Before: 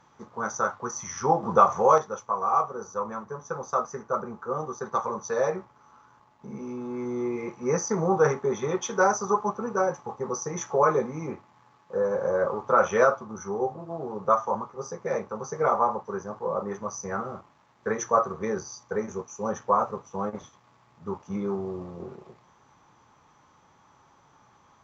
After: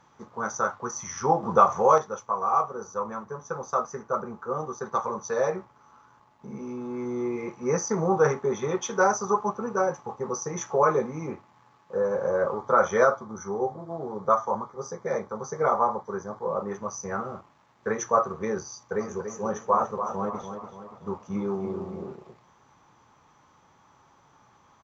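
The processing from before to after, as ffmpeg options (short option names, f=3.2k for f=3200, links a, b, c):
-filter_complex "[0:a]asettb=1/sr,asplit=3[a][b][c];[a]atrim=end=12.554[d];[b]atrim=start=12.55:end=16.48,asetpts=PTS-STARTPTS,afade=t=in:d=0.004:c=qsin,afade=t=out:st=3.926:d=0.004:c=qsin,asuperstop=centerf=2700:order=4:qfactor=4.3[e];[c]atrim=start=16.476[f];[d][e]acrossfade=d=0.004:c1=hsin:c2=qsin[g];[g][f]acrossfade=d=0.004:c1=qsin:c2=hsin,asplit=3[h][i][j];[h]afade=t=out:st=18.99:d=0.02[k];[i]asplit=2[l][m];[m]adelay=288,lowpass=f=3.6k:p=1,volume=-8dB,asplit=2[n][o];[o]adelay=288,lowpass=f=3.6k:p=1,volume=0.5,asplit=2[p][q];[q]adelay=288,lowpass=f=3.6k:p=1,volume=0.5,asplit=2[r][s];[s]adelay=288,lowpass=f=3.6k:p=1,volume=0.5,asplit=2[t][u];[u]adelay=288,lowpass=f=3.6k:p=1,volume=0.5,asplit=2[v][w];[w]adelay=288,lowpass=f=3.6k:p=1,volume=0.5[x];[l][n][p][r][t][v][x]amix=inputs=7:normalize=0,afade=t=in:st=18.99:d=0.02,afade=t=out:st=22.11:d=0.02[y];[j]afade=t=in:st=22.11:d=0.02[z];[k][y][z]amix=inputs=3:normalize=0"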